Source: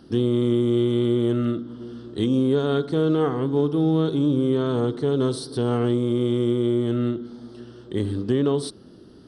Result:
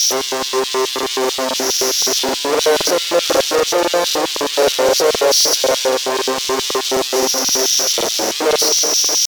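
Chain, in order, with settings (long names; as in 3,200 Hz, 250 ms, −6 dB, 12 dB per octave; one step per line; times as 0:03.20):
spike at every zero crossing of −24.5 dBFS
downward compressor 6 to 1, threshold −26 dBFS, peak gain reduction 9.5 dB
low-pass with resonance 5,300 Hz, resonance Q 9.2
fuzz pedal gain 43 dB, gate −51 dBFS
pitch shifter +1.5 semitones
on a send at −6.5 dB: convolution reverb RT60 4.7 s, pre-delay 20 ms
on the sum: auto-filter high-pass square 4.7 Hz 570–3,300 Hz
regular buffer underruns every 0.26 s, samples 2,048, repeat, from 0:00.94
level −1 dB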